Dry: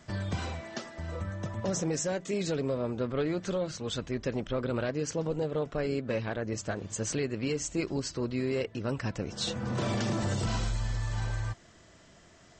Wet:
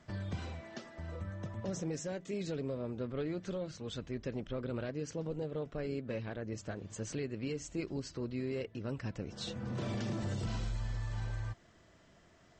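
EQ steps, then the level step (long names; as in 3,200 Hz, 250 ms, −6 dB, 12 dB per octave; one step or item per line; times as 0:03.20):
low-pass filter 3,600 Hz 6 dB per octave
dynamic equaliser 1,000 Hz, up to −5 dB, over −44 dBFS, Q 0.73
−5.5 dB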